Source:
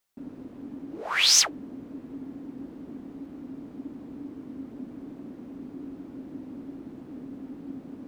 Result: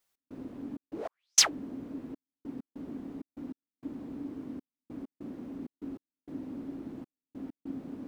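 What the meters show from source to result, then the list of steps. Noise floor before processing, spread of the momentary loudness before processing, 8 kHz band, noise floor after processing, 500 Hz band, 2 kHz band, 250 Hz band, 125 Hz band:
-46 dBFS, 21 LU, -4.0 dB, under -85 dBFS, -1.5 dB, -9.0 dB, -2.0 dB, -2.0 dB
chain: trance gate "x.xxx.x..xxxxx.." 98 bpm -60 dB

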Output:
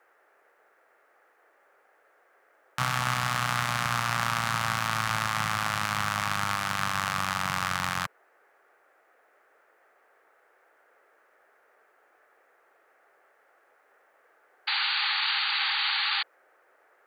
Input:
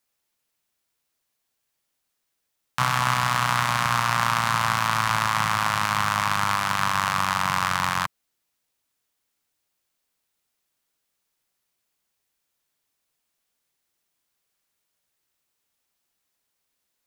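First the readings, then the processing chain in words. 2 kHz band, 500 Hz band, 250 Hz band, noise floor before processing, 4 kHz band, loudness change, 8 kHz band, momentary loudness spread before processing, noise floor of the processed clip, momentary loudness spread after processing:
-2.5 dB, -4.0 dB, -4.0 dB, -78 dBFS, +2.0 dB, -4.5 dB, -4.0 dB, 2 LU, -65 dBFS, 5 LU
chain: band noise 390–1800 Hz -59 dBFS; painted sound noise, 14.67–16.23 s, 780–4700 Hz -23 dBFS; peaking EQ 1 kHz -8.5 dB 0.22 oct; trim -4 dB

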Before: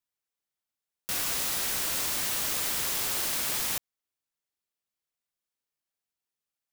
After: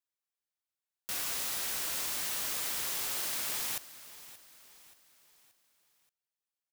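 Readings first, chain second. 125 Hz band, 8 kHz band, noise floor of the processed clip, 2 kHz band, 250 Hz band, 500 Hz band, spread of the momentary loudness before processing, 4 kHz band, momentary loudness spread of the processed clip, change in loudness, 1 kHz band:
-9.5 dB, -5.0 dB, under -85 dBFS, -5.0 dB, -8.5 dB, -6.5 dB, 4 LU, -5.0 dB, 16 LU, -5.0 dB, -5.5 dB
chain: bass shelf 330 Hz -5.5 dB; on a send: feedback delay 578 ms, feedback 45%, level -16.5 dB; on the sum: trim -5 dB

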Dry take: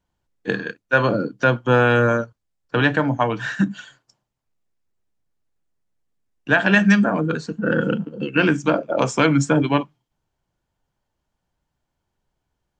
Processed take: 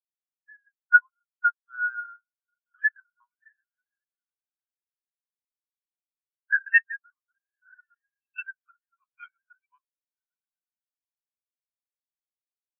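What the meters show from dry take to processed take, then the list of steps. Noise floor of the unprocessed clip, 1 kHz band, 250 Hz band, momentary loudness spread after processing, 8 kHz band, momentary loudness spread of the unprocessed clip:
-79 dBFS, -9.0 dB, under -40 dB, 19 LU, under -40 dB, 11 LU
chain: high-pass 1.2 kHz 24 dB/octave; echo that smears into a reverb 1118 ms, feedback 58%, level -12 dB; LPC vocoder at 8 kHz pitch kept; spectral contrast expander 4:1

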